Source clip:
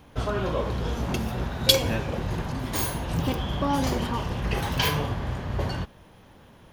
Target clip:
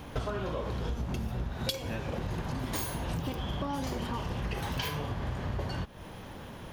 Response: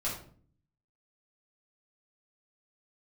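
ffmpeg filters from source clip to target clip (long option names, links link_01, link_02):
-filter_complex "[0:a]asettb=1/sr,asplit=3[link_01][link_02][link_03];[link_01]atrim=end=0.894[link_04];[link_02]atrim=start=0.89:end=1.53,asetpts=PTS-STARTPTS,afade=type=in:duration=0.004:curve=qsin,afade=type=out:start_time=0.636:duration=0.004:curve=qsin,lowshelf=frequency=170:gain=8.5[link_05];[link_03]atrim=start=1.526[link_06];[link_04][link_05]acrossfade=duration=0.004:curve1=hsin:curve2=qsin[link_07];[link_07][link_06]acrossfade=duration=0.004:curve1=qsin:curve2=hsin,acompressor=threshold=-38dB:ratio=12,volume=7.5dB"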